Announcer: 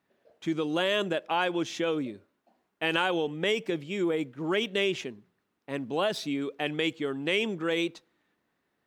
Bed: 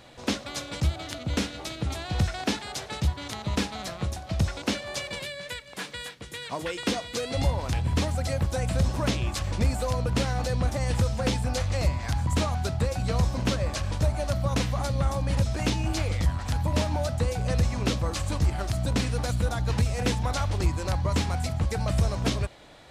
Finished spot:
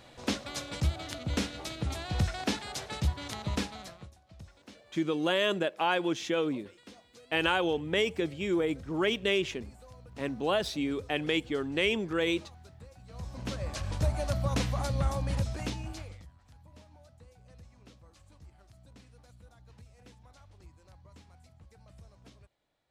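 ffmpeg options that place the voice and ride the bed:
-filter_complex "[0:a]adelay=4500,volume=-0.5dB[a];[1:a]volume=17.5dB,afade=t=out:st=3.47:d=0.64:silence=0.0891251,afade=t=in:st=13.09:d=1.01:silence=0.0891251,afade=t=out:st=15.09:d=1.18:silence=0.0501187[b];[a][b]amix=inputs=2:normalize=0"

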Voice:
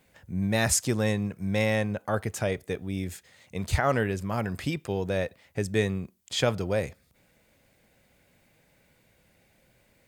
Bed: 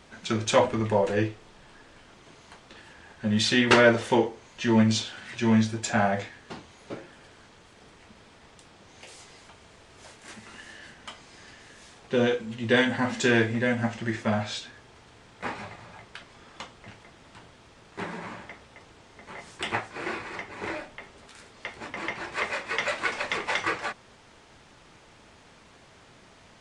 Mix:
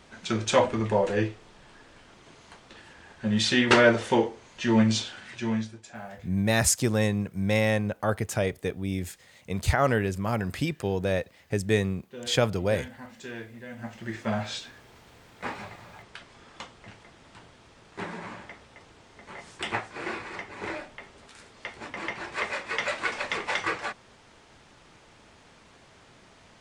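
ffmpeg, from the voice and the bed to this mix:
-filter_complex "[0:a]adelay=5950,volume=1.5dB[a];[1:a]volume=16dB,afade=t=out:st=5.08:d=0.75:silence=0.141254,afade=t=in:st=13.68:d=0.8:silence=0.149624[b];[a][b]amix=inputs=2:normalize=0"

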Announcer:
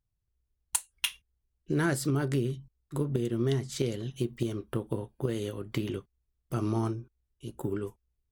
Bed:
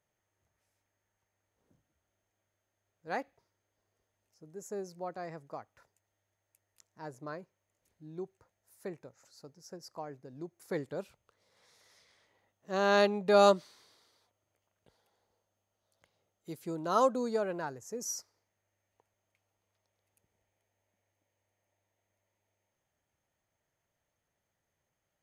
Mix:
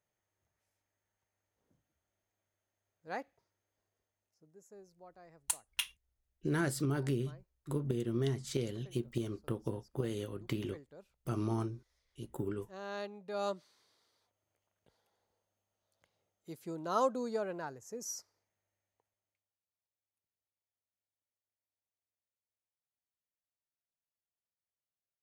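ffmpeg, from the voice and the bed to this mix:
-filter_complex "[0:a]adelay=4750,volume=-5dB[a];[1:a]volume=7.5dB,afade=t=out:st=3.76:d=0.93:silence=0.266073,afade=t=in:st=13.33:d=1.17:silence=0.251189,afade=t=out:st=18.37:d=1.2:silence=0.105925[b];[a][b]amix=inputs=2:normalize=0"

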